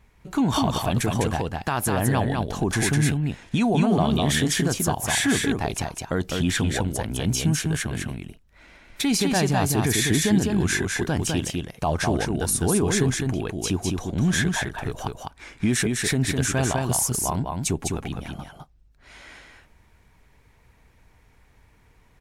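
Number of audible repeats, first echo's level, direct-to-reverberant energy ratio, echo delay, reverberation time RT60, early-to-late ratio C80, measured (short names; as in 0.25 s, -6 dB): 1, -3.5 dB, none, 0.204 s, none, none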